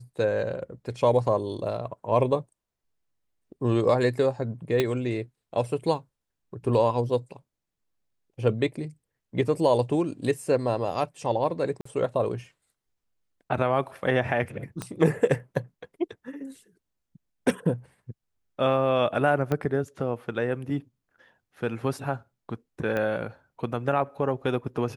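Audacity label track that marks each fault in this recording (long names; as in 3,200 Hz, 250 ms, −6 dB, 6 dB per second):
4.800000	4.800000	click −10 dBFS
11.810000	11.850000	drop-out 44 ms
14.820000	14.820000	click −18 dBFS
19.520000	19.520000	click −15 dBFS
22.970000	22.970000	click −17 dBFS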